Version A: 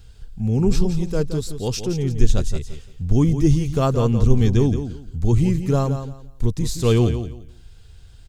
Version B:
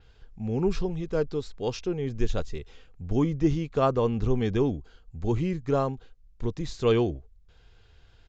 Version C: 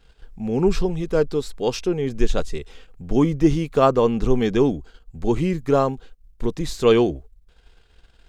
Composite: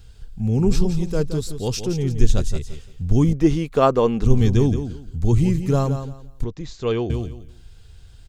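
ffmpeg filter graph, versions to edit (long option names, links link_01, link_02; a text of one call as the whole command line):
ffmpeg -i take0.wav -i take1.wav -i take2.wav -filter_complex "[0:a]asplit=3[link_01][link_02][link_03];[link_01]atrim=end=3.332[link_04];[2:a]atrim=start=3.328:end=4.252[link_05];[link_02]atrim=start=4.248:end=6.442[link_06];[1:a]atrim=start=6.438:end=7.102[link_07];[link_03]atrim=start=7.098[link_08];[link_04][link_05]acrossfade=duration=0.004:curve1=hsin:curve2=hsin[link_09];[link_09][link_06]acrossfade=duration=0.004:curve1=hsin:curve2=hsin[link_10];[link_10][link_07]acrossfade=duration=0.004:curve1=hsin:curve2=hsin[link_11];[link_11][link_08]acrossfade=duration=0.004:curve1=hsin:curve2=hsin" out.wav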